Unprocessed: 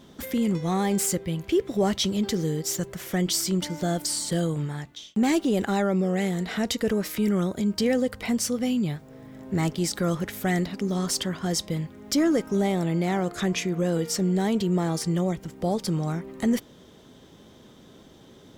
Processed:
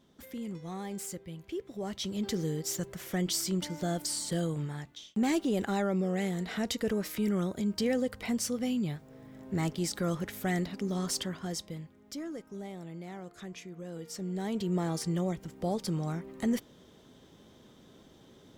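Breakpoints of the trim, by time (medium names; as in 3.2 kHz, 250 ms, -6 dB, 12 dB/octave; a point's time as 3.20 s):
1.82 s -14.5 dB
2.31 s -6 dB
11.18 s -6 dB
12.24 s -18 dB
13.84 s -18 dB
14.76 s -6 dB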